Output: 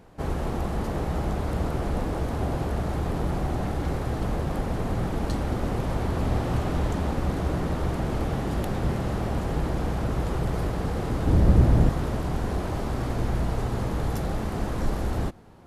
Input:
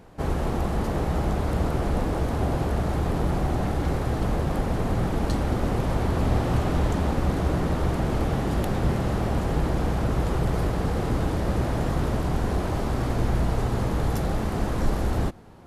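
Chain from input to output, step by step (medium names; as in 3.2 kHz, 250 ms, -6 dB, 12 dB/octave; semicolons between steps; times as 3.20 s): 11.27–11.89 s: bass shelf 320 Hz +12 dB; trim -2.5 dB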